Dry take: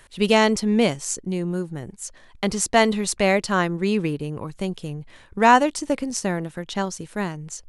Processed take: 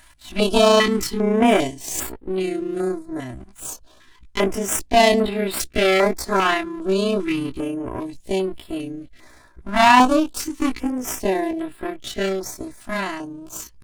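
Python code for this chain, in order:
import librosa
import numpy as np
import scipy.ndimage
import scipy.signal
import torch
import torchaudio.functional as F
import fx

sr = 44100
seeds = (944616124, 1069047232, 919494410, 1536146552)

y = fx.lower_of_two(x, sr, delay_ms=3.0)
y = fx.stretch_grains(y, sr, factor=1.8, grain_ms=71.0)
y = fx.filter_held_notch(y, sr, hz=2.5, low_hz=440.0, high_hz=6200.0)
y = F.gain(torch.from_numpy(y), 4.5).numpy()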